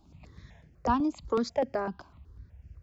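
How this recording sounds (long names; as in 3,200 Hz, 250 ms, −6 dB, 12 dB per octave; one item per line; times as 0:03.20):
notches that jump at a steady rate 8 Hz 500–3,800 Hz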